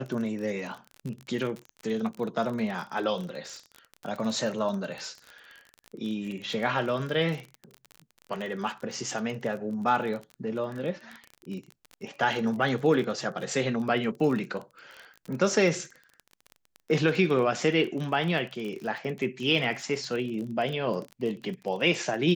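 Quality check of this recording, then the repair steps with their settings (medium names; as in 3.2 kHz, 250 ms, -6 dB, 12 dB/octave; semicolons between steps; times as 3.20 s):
crackle 30 per s -33 dBFS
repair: de-click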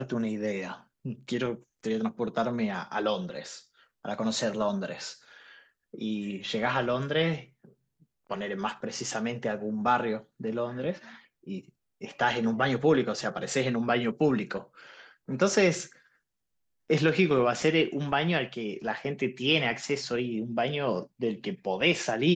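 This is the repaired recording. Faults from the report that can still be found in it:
nothing left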